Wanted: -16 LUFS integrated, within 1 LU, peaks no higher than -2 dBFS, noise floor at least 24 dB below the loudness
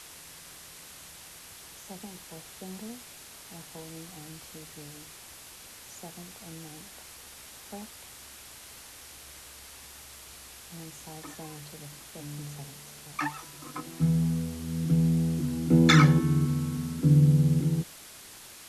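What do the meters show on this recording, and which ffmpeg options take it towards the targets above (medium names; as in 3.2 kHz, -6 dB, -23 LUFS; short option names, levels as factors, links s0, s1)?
noise floor -48 dBFS; noise floor target -49 dBFS; loudness -25.0 LUFS; peak level -8.0 dBFS; loudness target -16.0 LUFS
-> -af "afftdn=nr=6:nf=-48"
-af "volume=2.82,alimiter=limit=0.794:level=0:latency=1"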